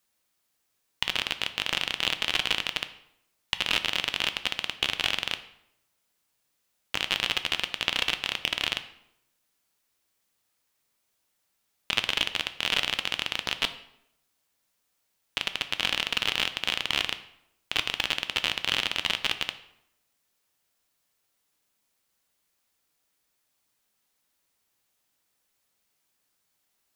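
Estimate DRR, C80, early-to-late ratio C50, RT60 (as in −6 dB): 9.5 dB, 15.5 dB, 13.5 dB, 0.80 s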